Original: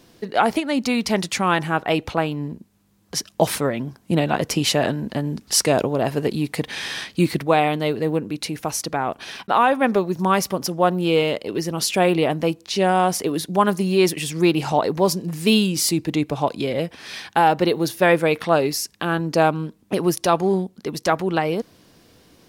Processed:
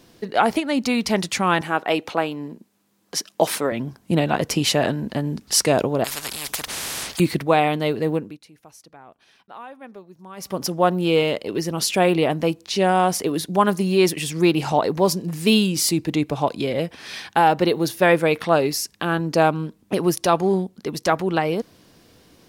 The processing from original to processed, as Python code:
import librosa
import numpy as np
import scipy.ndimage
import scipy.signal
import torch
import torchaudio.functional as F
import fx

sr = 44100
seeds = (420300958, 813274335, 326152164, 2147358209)

y = fx.highpass(x, sr, hz=250.0, slope=12, at=(1.61, 3.72))
y = fx.spectral_comp(y, sr, ratio=10.0, at=(6.04, 7.2))
y = fx.edit(y, sr, fx.fade_down_up(start_s=8.13, length_s=2.49, db=-22.0, fade_s=0.26), tone=tone)